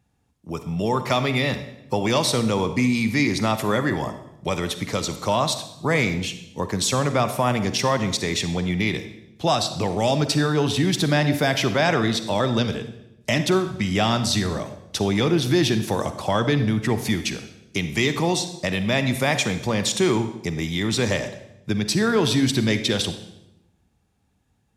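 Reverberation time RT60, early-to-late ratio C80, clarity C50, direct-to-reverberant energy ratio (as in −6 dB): 0.85 s, 13.0 dB, 10.5 dB, 9.5 dB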